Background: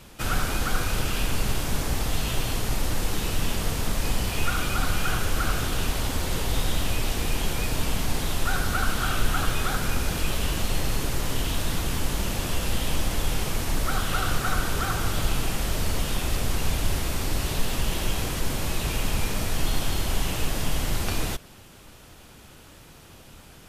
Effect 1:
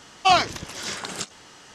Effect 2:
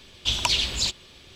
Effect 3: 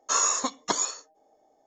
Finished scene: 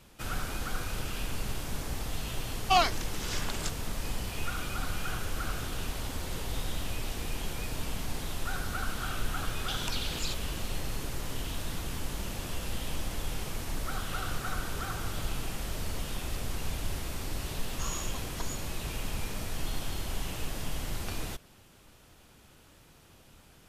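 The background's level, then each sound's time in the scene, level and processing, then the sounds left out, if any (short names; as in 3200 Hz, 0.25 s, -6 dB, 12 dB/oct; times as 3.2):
background -9 dB
2.45 add 1 -6.5 dB
9.43 add 2 -1 dB + compressor, threshold -33 dBFS
17.7 add 3 -16 dB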